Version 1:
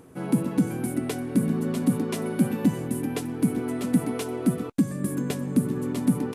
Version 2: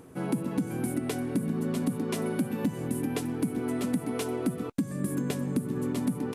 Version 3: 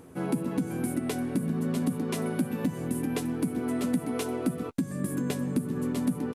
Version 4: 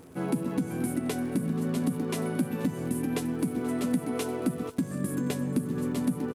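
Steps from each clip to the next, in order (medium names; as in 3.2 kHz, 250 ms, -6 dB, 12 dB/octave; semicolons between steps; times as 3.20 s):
compression, threshold -25 dBFS, peak gain reduction 9.5 dB
doubling 12 ms -11 dB
crackle 110 per s -43 dBFS; delay 481 ms -17 dB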